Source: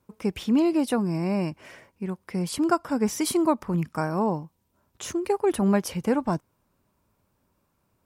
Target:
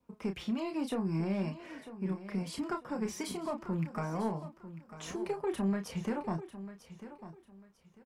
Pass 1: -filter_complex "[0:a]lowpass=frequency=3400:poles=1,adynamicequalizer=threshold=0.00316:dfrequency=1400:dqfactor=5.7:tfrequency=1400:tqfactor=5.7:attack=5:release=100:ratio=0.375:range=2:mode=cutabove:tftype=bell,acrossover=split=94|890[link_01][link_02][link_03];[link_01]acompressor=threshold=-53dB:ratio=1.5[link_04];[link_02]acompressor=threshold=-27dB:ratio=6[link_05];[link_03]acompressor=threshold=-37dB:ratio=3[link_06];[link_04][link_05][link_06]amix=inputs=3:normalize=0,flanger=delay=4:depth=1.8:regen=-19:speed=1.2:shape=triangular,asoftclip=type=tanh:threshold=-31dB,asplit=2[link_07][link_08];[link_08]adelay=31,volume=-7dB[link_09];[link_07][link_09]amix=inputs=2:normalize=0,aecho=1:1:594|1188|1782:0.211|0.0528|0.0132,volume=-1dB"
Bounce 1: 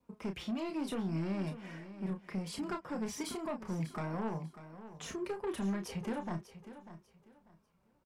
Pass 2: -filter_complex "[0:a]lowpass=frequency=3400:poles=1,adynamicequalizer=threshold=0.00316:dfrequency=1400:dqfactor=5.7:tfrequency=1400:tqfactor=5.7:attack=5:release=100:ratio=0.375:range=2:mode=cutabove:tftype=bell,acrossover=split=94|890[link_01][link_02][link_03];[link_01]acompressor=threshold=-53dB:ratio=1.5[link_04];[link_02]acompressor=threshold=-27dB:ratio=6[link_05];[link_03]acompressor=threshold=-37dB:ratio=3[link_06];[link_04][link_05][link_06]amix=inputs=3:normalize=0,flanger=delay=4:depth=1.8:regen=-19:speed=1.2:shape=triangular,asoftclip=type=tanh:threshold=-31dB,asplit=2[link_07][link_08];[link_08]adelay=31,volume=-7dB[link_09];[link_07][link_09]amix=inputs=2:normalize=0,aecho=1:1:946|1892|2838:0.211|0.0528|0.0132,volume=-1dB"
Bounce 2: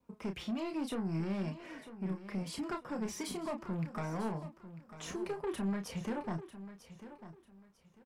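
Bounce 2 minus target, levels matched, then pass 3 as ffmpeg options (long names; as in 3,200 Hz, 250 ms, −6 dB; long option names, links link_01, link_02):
soft clipping: distortion +10 dB
-filter_complex "[0:a]lowpass=frequency=3400:poles=1,adynamicequalizer=threshold=0.00316:dfrequency=1400:dqfactor=5.7:tfrequency=1400:tqfactor=5.7:attack=5:release=100:ratio=0.375:range=2:mode=cutabove:tftype=bell,acrossover=split=94|890[link_01][link_02][link_03];[link_01]acompressor=threshold=-53dB:ratio=1.5[link_04];[link_02]acompressor=threshold=-27dB:ratio=6[link_05];[link_03]acompressor=threshold=-37dB:ratio=3[link_06];[link_04][link_05][link_06]amix=inputs=3:normalize=0,flanger=delay=4:depth=1.8:regen=-19:speed=1.2:shape=triangular,asoftclip=type=tanh:threshold=-23dB,asplit=2[link_07][link_08];[link_08]adelay=31,volume=-7dB[link_09];[link_07][link_09]amix=inputs=2:normalize=0,aecho=1:1:946|1892|2838:0.211|0.0528|0.0132,volume=-1dB"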